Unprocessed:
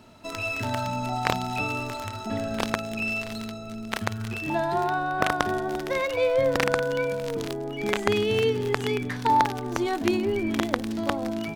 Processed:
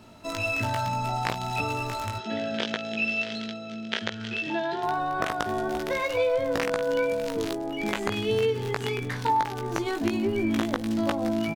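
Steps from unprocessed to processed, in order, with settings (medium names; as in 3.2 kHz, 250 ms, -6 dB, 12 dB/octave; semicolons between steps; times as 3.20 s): compression, threshold -24 dBFS, peak gain reduction 9.5 dB; 2.18–4.83 s: cabinet simulation 220–5900 Hz, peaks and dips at 270 Hz -4 dB, 470 Hz +3 dB, 780 Hz -7 dB, 1.1 kHz -10 dB, 1.7 kHz +3 dB, 3.2 kHz +9 dB; doubling 18 ms -4 dB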